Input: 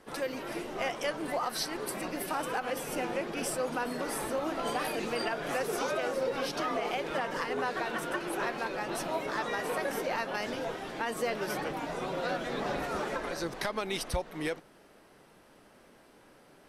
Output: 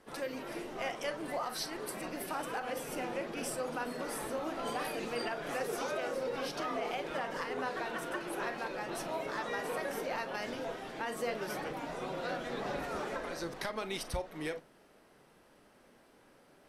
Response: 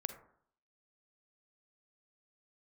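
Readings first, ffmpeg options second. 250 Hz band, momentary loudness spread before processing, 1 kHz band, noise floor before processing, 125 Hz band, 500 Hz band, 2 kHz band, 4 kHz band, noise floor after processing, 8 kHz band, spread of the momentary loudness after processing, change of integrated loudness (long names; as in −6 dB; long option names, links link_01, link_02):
−4.0 dB, 4 LU, −4.0 dB, −59 dBFS, −4.5 dB, −4.0 dB, −4.0 dB, −4.5 dB, −63 dBFS, −4.5 dB, 4 LU, −4.0 dB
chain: -filter_complex "[1:a]atrim=start_sample=2205,atrim=end_sample=3087,asetrate=52920,aresample=44100[link_01];[0:a][link_01]afir=irnorm=-1:irlink=0,volume=-1.5dB"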